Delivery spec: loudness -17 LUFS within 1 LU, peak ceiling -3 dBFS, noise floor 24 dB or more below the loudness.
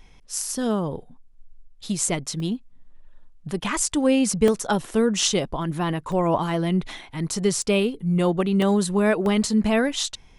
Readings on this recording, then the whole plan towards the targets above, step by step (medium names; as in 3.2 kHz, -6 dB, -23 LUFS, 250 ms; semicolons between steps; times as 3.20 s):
dropouts 7; longest dropout 1.7 ms; loudness -23.0 LUFS; peak level -5.5 dBFS; loudness target -17.0 LUFS
-> interpolate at 2.40/4.48/5.20/6.12/7.62/8.62/9.26 s, 1.7 ms; trim +6 dB; peak limiter -3 dBFS